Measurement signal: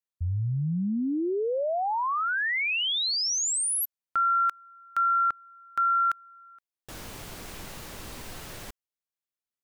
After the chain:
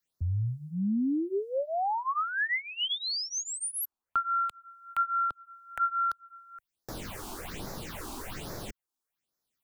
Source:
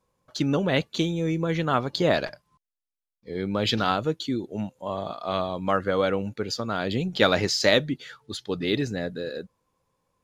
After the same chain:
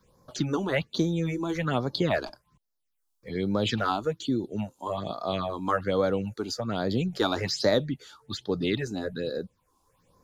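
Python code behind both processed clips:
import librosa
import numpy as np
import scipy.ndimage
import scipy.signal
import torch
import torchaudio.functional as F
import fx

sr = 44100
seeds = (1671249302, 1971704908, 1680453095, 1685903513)

y = fx.phaser_stages(x, sr, stages=6, low_hz=130.0, high_hz=2900.0, hz=1.2, feedback_pct=15)
y = fx.band_squash(y, sr, depth_pct=40)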